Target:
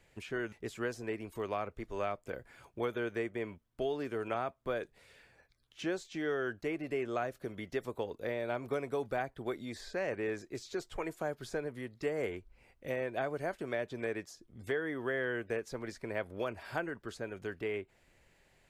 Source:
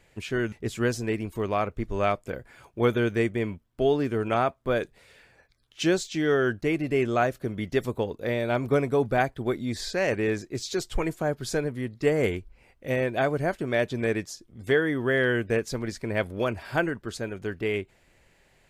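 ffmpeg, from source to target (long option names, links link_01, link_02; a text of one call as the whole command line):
ffmpeg -i in.wav -filter_complex "[0:a]acrossover=split=350|2100[link_01][link_02][link_03];[link_01]acompressor=threshold=-41dB:ratio=4[link_04];[link_02]acompressor=threshold=-27dB:ratio=4[link_05];[link_03]acompressor=threshold=-46dB:ratio=4[link_06];[link_04][link_05][link_06]amix=inputs=3:normalize=0,volume=-5.5dB" out.wav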